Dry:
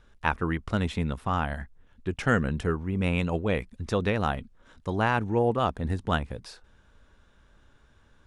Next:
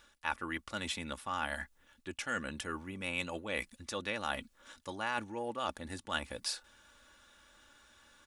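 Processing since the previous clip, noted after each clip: comb 3.5 ms, depth 50%; reverse; compressor 6:1, threshold -32 dBFS, peak gain reduction 14 dB; reverse; tilt +3.5 dB/oct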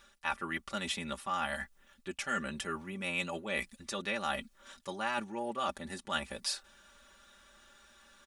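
comb 5.1 ms, depth 74%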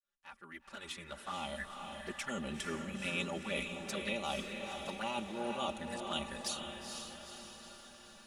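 opening faded in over 1.77 s; envelope flanger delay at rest 10.8 ms, full sweep at -33 dBFS; diffused feedback echo 0.472 s, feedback 56%, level -5 dB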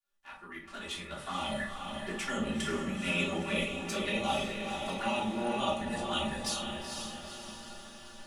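reverb RT60 0.45 s, pre-delay 3 ms, DRR -3.5 dB

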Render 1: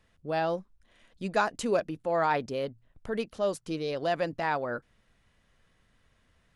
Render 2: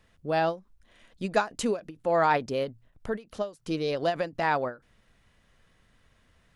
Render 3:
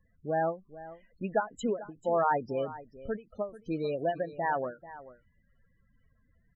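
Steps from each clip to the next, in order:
ending taper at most 230 dB/s; gain +3.5 dB
loudest bins only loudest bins 16; echo 0.439 s -16.5 dB; gain -3 dB

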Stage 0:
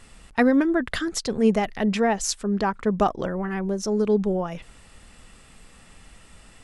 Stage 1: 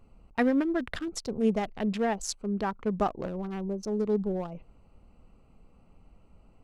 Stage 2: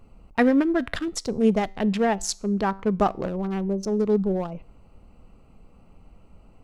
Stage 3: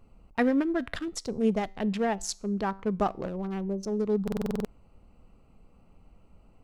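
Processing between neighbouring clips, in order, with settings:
Wiener smoothing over 25 samples; gain -6 dB
resonator 97 Hz, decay 0.48 s, harmonics all, mix 30%; gain +8.5 dB
stuck buffer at 4.23, samples 2048, times 8; gain -5.5 dB

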